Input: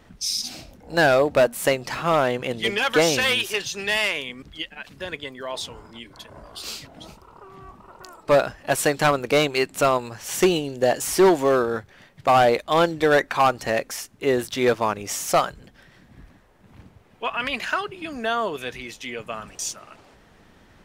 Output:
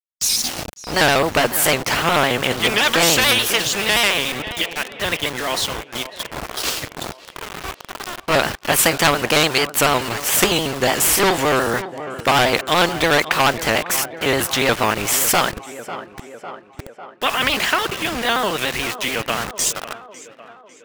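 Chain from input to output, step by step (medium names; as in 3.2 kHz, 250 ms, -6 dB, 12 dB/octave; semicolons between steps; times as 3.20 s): pitch shift switched off and on +1.5 st, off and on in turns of 72 ms; spectral noise reduction 7 dB; small samples zeroed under -40.5 dBFS; on a send: tape echo 550 ms, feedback 56%, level -23 dB, low-pass 4.6 kHz; on the sum: spectrum-flattening compressor 2:1; trim +8 dB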